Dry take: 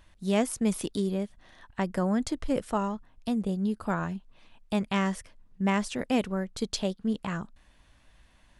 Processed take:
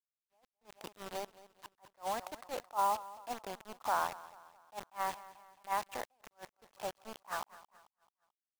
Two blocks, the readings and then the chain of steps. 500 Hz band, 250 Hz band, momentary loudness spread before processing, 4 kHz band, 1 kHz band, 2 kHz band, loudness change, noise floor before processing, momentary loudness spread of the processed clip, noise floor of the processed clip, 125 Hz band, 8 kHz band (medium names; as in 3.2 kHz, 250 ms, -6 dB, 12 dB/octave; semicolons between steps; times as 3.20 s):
-12.0 dB, -27.5 dB, 9 LU, -10.0 dB, -0.5 dB, -8.0 dB, -9.0 dB, -61 dBFS, 22 LU, under -85 dBFS, -27.5 dB, -9.5 dB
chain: fade out at the end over 2.39 s; in parallel at -3 dB: compression 5:1, threshold -42 dBFS, peak gain reduction 20 dB; on the sum: Chebyshev shaper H 2 -27 dB, 4 -30 dB, 5 -43 dB, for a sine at -10.5 dBFS; level rider gain up to 15.5 dB; peak limiter -11 dBFS, peak gain reduction 9.5 dB; ladder band-pass 950 Hz, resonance 55%; bit crusher 7-bit; feedback delay 219 ms, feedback 45%, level -18.5 dB; attacks held to a fixed rise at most 350 dB/s; trim +1 dB